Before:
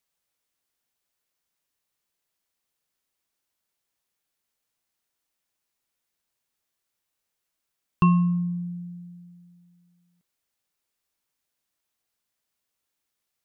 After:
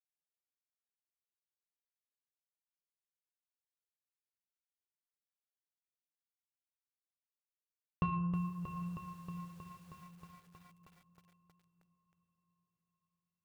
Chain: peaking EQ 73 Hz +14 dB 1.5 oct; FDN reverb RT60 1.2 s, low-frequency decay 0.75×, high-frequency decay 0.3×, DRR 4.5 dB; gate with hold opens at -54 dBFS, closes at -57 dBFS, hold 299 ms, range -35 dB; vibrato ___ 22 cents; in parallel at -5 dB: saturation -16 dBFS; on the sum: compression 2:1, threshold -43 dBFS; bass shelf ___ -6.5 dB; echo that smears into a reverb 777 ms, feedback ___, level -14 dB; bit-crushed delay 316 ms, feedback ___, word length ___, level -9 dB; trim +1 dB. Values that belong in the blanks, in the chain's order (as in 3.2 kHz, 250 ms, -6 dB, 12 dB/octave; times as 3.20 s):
1.8 Hz, 220 Hz, 42%, 80%, 10-bit